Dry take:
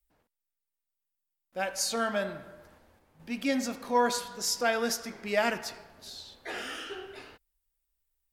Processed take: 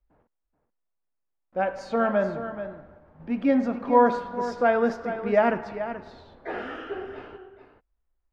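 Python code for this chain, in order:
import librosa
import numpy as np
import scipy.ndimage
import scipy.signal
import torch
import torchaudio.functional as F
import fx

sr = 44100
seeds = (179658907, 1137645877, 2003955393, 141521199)

p1 = scipy.signal.sosfilt(scipy.signal.butter(2, 1200.0, 'lowpass', fs=sr, output='sos'), x)
p2 = p1 + fx.echo_single(p1, sr, ms=431, db=-11.0, dry=0)
y = p2 * 10.0 ** (8.0 / 20.0)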